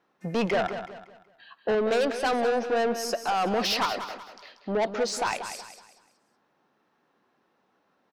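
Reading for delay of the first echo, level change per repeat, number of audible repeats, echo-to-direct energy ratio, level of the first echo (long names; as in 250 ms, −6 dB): 187 ms, −9.0 dB, 3, −9.5 dB, −10.0 dB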